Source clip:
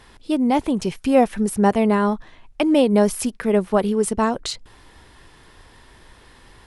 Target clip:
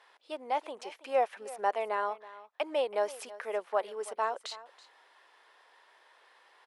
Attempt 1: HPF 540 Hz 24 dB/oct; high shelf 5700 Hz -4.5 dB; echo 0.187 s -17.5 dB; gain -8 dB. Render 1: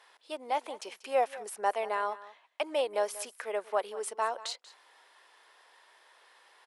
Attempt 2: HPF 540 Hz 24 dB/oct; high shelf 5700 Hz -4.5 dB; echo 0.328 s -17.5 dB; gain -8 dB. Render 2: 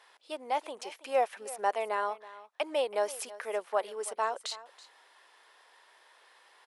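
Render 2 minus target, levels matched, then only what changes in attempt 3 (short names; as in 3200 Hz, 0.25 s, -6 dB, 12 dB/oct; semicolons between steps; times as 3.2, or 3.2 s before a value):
8000 Hz band +7.0 dB
change: high shelf 5700 Hz -15 dB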